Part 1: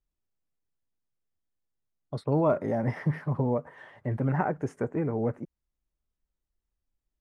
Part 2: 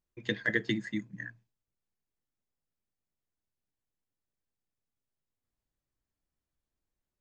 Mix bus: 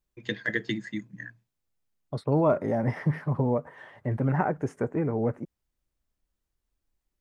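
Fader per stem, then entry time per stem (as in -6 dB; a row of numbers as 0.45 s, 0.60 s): +1.5 dB, +0.5 dB; 0.00 s, 0.00 s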